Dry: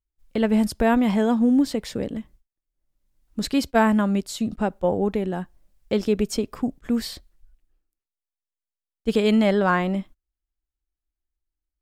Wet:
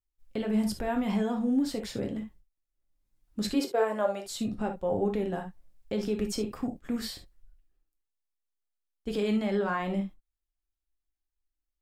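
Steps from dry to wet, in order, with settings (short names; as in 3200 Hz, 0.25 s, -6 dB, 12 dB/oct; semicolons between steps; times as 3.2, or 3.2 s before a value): limiter -16 dBFS, peak gain reduction 10.5 dB; 3.54–4.23 resonant high-pass 340 Hz -> 710 Hz, resonance Q 5.8; on a send: reverb, pre-delay 7 ms, DRR 3 dB; on the sum: gain -6 dB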